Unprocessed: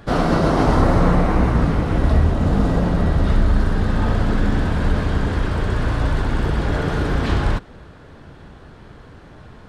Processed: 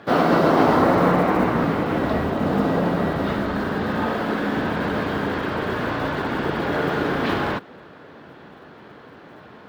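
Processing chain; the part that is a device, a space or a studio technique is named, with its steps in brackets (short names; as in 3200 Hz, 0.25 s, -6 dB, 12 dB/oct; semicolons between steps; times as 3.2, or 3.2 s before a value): early digital voice recorder (BPF 230–3900 Hz; block floating point 7-bit); 4.06–4.57 bell 82 Hz -9 dB 1.6 oct; gain +2.5 dB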